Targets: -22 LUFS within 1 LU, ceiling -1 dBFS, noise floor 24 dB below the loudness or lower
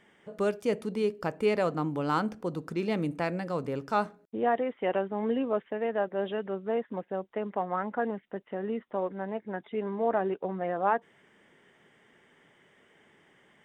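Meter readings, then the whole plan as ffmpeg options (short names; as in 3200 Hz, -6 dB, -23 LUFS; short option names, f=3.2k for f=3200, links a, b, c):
loudness -31.5 LUFS; peak -13.5 dBFS; loudness target -22.0 LUFS
-> -af "volume=9.5dB"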